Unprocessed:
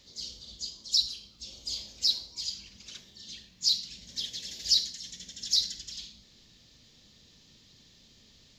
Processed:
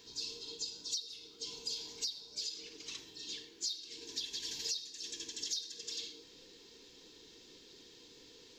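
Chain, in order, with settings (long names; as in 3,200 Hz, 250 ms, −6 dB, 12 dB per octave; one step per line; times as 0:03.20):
frequency inversion band by band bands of 500 Hz
downward compressor 8 to 1, threshold −37 dBFS, peak gain reduction 18 dB
every ending faded ahead of time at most 240 dB per second
level +1 dB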